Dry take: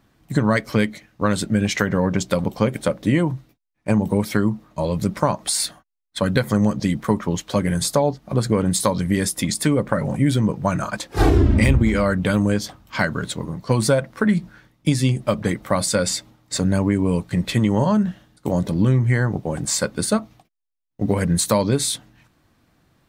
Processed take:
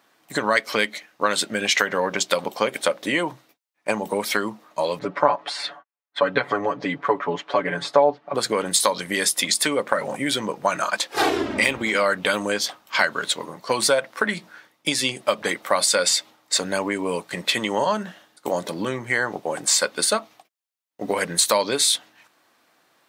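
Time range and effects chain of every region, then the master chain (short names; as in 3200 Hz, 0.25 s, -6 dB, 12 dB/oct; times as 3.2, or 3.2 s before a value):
4.99–8.35 LPF 2000 Hz + comb 7 ms, depth 88%
whole clip: HPF 530 Hz 12 dB/oct; dynamic EQ 3300 Hz, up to +5 dB, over -40 dBFS, Q 0.97; compressor 1.5:1, threshold -24 dBFS; gain +4.5 dB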